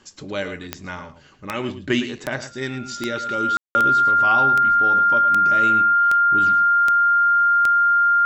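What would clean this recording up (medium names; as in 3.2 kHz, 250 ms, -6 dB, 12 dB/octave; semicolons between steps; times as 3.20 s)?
de-click; band-stop 1.4 kHz, Q 30; room tone fill 3.57–3.75 s; inverse comb 109 ms -11.5 dB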